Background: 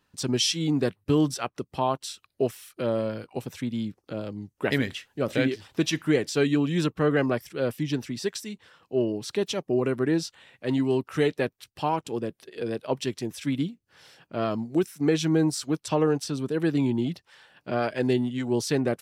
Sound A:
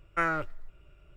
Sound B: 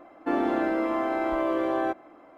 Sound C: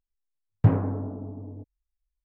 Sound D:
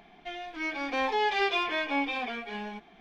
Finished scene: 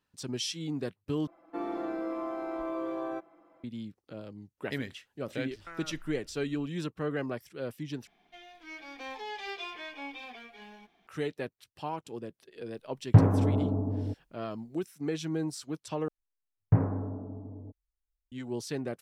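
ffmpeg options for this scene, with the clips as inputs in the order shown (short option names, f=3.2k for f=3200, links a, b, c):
-filter_complex "[3:a]asplit=2[a][b];[0:a]volume=-10dB[c];[2:a]aecho=1:1:6:0.78[d];[1:a]acompressor=threshold=-38dB:ratio=6:attack=3.2:release=140:knee=1:detection=peak[e];[4:a]crystalizer=i=2:c=0[f];[a]dynaudnorm=f=140:g=3:m=11.5dB[g];[b]lowpass=f=2.2k:w=0.5412,lowpass=f=2.2k:w=1.3066[h];[c]asplit=4[i][j][k][l];[i]atrim=end=1.274[m];[d]atrim=end=2.37,asetpts=PTS-STARTPTS,volume=-12.5dB[n];[j]atrim=start=3.636:end=8.074[o];[f]atrim=end=3,asetpts=PTS-STARTPTS,volume=-13.5dB[p];[k]atrim=start=11.066:end=16.084[q];[h]atrim=end=2.24,asetpts=PTS-STARTPTS,volume=-4.5dB[r];[l]atrim=start=18.316[s];[e]atrim=end=1.16,asetpts=PTS-STARTPTS,volume=-4.5dB,afade=t=in:d=0.004:c=hsin,afade=t=out:st=1.156:d=0.004:c=hsin,adelay=5500[t];[g]atrim=end=2.24,asetpts=PTS-STARTPTS,volume=-4dB,afade=t=in:d=0.004:c=hsin,afade=t=out:st=2.236:d=0.004:c=hsin,adelay=12500[u];[m][n]acrossfade=d=0.004:c1=hsin:c2=hsin[v];[v][o]acrossfade=d=0.004:c1=hsin:c2=hsin[w];[w][p]acrossfade=d=0.004:c1=hsin:c2=hsin[x];[x][q]acrossfade=d=0.004:c1=hsin:c2=hsin[y];[y][r]acrossfade=d=0.004:c1=hsin:c2=hsin[z];[z][s]acrossfade=d=0.004:c1=hsin:c2=hsin[aa];[aa][t][u]amix=inputs=3:normalize=0"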